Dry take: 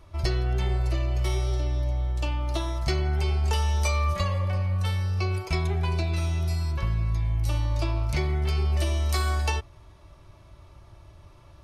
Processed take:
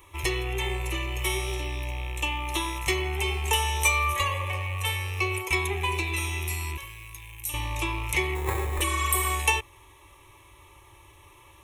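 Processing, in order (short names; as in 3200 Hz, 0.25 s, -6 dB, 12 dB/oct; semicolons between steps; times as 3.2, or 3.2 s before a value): rattling part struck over -32 dBFS, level -36 dBFS; 6.77–7.54 pre-emphasis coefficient 0.8; 8.86–9.27 spectral repair 780–7600 Hz after; tilt +3 dB/oct; 8.35–8.81 sample-rate reducer 3000 Hz, jitter 0%; fixed phaser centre 970 Hz, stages 8; gain +6.5 dB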